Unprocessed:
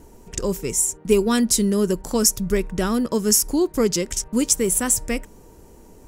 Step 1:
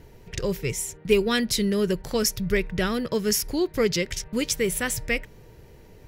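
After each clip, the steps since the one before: graphic EQ 125/250/500/1000/2000/4000/8000 Hz +10/-7/+3/-5/+9/+7/-11 dB; trim -3 dB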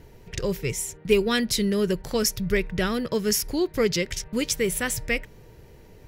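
no audible change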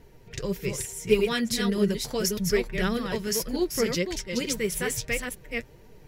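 chunks repeated in reverse 297 ms, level -4 dB; flange 1.7 Hz, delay 3.9 ms, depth 5 ms, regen +38%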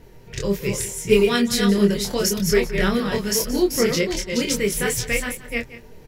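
doubling 25 ms -3.5 dB; delay 176 ms -15.5 dB; trim +4.5 dB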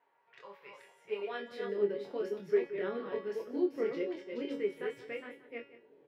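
feedback comb 140 Hz, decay 0.45 s, harmonics all, mix 80%; high-pass sweep 940 Hz -> 360 Hz, 0.71–2.01 s; distance through air 470 m; trim -5.5 dB

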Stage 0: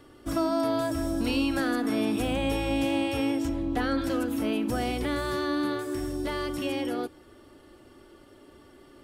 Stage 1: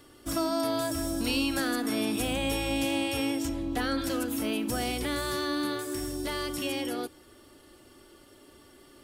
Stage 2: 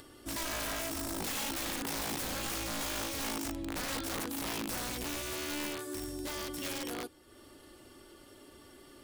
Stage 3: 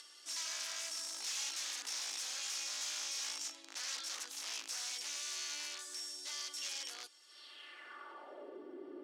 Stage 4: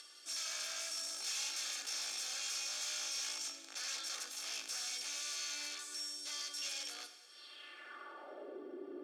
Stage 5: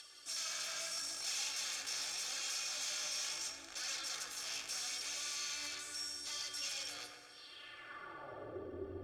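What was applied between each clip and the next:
treble shelf 3.3 kHz +11.5 dB; trim -3 dB
integer overflow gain 25 dB; upward compressor, threshold -41 dBFS; trim -6 dB
high-pass 230 Hz 12 dB/octave; overdrive pedal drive 16 dB, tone 2.6 kHz, clips at -25.5 dBFS; band-pass sweep 6.1 kHz -> 340 Hz, 7.25–8.66 s; trim +6.5 dB
comb of notches 980 Hz; reverberation RT60 1.3 s, pre-delay 13 ms, DRR 8.5 dB; trim +1 dB
octave divider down 2 oct, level -3 dB; flange 0.78 Hz, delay 1.1 ms, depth 7 ms, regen +54%; bucket-brigade echo 132 ms, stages 2048, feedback 59%, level -5.5 dB; trim +4 dB

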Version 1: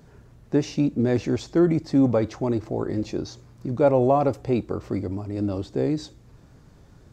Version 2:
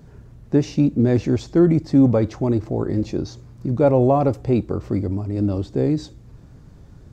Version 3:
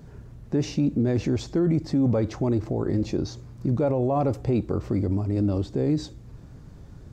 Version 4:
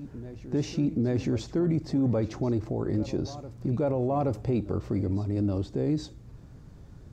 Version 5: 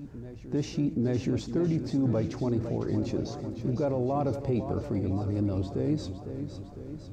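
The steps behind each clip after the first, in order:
bass shelf 310 Hz +8 dB
peak limiter -15.5 dBFS, peak gain reduction 9.5 dB
reverse echo 824 ms -15.5 dB; trim -3.5 dB
modulated delay 505 ms, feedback 60%, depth 89 cents, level -9.5 dB; trim -1.5 dB

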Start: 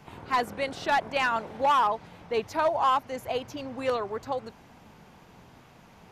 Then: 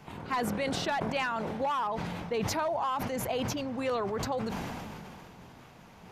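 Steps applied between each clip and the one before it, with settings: compression, threshold -29 dBFS, peak gain reduction 9 dB; dynamic bell 190 Hz, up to +6 dB, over -56 dBFS, Q 2; decay stretcher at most 21 dB/s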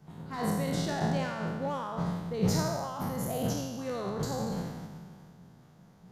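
spectral sustain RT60 1.46 s; fifteen-band graphic EQ 160 Hz +11 dB, 1 kHz -4 dB, 2.5 kHz -11 dB; upward expansion 1.5:1, over -36 dBFS; trim -2.5 dB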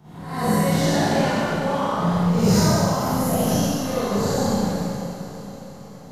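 reverse spectral sustain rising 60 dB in 0.54 s; echo that smears into a reverb 500 ms, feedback 53%, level -13 dB; Schroeder reverb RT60 1.5 s, combs from 31 ms, DRR -9.5 dB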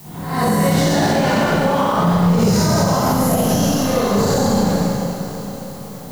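peak limiter -14.5 dBFS, peak gain reduction 8 dB; added noise blue -51 dBFS; trim +7.5 dB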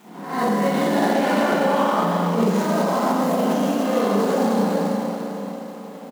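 median filter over 9 samples; brick-wall FIR high-pass 180 Hz; delay 407 ms -9 dB; trim -2.5 dB

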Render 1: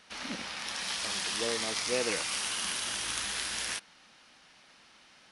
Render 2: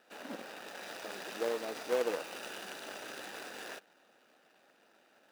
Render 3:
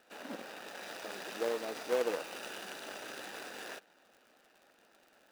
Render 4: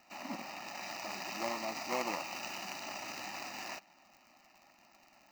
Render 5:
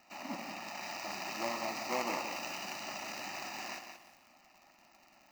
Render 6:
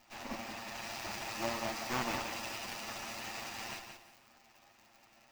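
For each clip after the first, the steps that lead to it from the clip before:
median filter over 41 samples; high-pass 480 Hz 12 dB/octave; trim +7 dB
crackle 59 per s -50 dBFS
static phaser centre 2.3 kHz, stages 8; trim +6.5 dB
on a send at -11.5 dB: reverberation RT60 1.1 s, pre-delay 38 ms; on the sum: bit-crushed delay 176 ms, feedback 35%, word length 10-bit, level -7 dB
comb filter that takes the minimum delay 8.8 ms; trim +1 dB

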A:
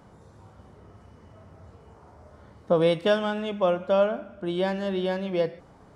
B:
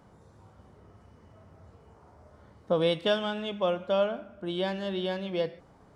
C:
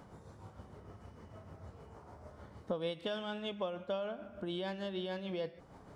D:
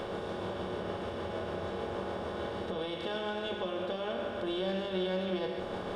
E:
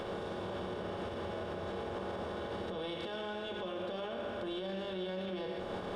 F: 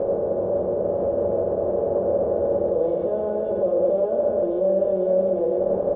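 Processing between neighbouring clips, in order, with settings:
dynamic bell 3.4 kHz, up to +7 dB, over -51 dBFS, Q 1.9; trim -4.5 dB
tremolo 6.6 Hz, depth 45%; compression 3:1, threshold -43 dBFS, peak gain reduction 16 dB; trim +4 dB
spectral levelling over time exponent 0.4; peak limiter -27.5 dBFS, peak gain reduction 8.5 dB; reverberation RT60 0.45 s, pre-delay 3 ms, DRR 2.5 dB
peak limiter -31 dBFS, peak gain reduction 8.5 dB
resonant low-pass 560 Hz, resonance Q 4.9; delay 976 ms -7 dB; trim +8.5 dB

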